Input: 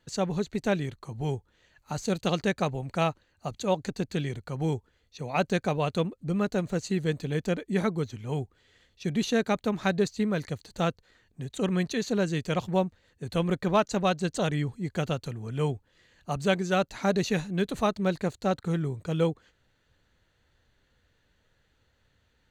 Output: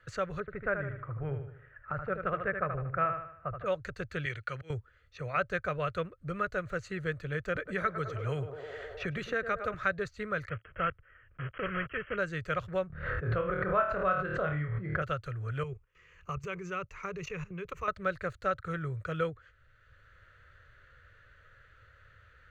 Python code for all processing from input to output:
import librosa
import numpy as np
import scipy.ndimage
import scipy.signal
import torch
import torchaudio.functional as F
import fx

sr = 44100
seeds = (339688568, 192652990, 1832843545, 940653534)

y = fx.chain(x, sr, fx.lowpass(hz=1900.0, slope=24),
    fx.echo_feedback(ms=76, feedback_pct=40, wet_db=-7), at=(0.4, 3.66))
y = fx.chain(y, sr, fx.weighting(curve='D'),
    fx.auto_swell(attack_ms=493.0), at=(4.25, 4.7))
y = fx.chain(y, sr, fx.echo_banded(ms=104, feedback_pct=70, hz=610.0, wet_db=-8.0),
    fx.band_squash(depth_pct=70), at=(7.55, 9.74))
y = fx.chain(y, sr, fx.block_float(bits=3),
    fx.dynamic_eq(hz=830.0, q=0.94, threshold_db=-40.0, ratio=4.0, max_db=-4),
    fx.brickwall_lowpass(high_hz=3300.0), at=(10.49, 12.18))
y = fx.chain(y, sr, fx.lowpass(hz=1500.0, slope=12),
    fx.room_flutter(wall_m=4.5, rt60_s=0.36),
    fx.pre_swell(db_per_s=36.0), at=(12.87, 15.02))
y = fx.chain(y, sr, fx.ripple_eq(per_octave=0.76, db=13),
    fx.level_steps(step_db=16), at=(15.63, 17.88))
y = fx.curve_eq(y, sr, hz=(110.0, 230.0, 570.0, 860.0, 1300.0, 3900.0, 7900.0), db=(0, -22, -4, -19, 6, -14, -18))
y = fx.band_squash(y, sr, depth_pct=40)
y = y * 10.0 ** (1.5 / 20.0)